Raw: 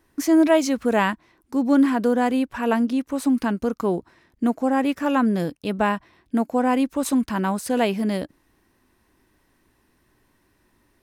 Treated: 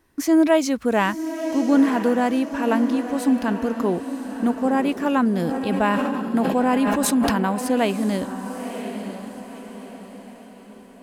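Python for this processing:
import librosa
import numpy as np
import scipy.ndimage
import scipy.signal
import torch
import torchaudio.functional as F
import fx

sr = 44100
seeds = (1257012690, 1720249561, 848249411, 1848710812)

y = fx.echo_diffused(x, sr, ms=990, feedback_pct=43, wet_db=-9.0)
y = fx.sustainer(y, sr, db_per_s=22.0, at=(5.38, 7.47))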